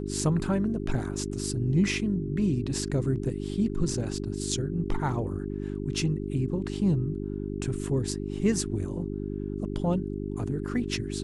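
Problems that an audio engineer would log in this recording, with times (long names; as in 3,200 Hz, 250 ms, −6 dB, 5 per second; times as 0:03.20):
mains hum 50 Hz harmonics 8 −33 dBFS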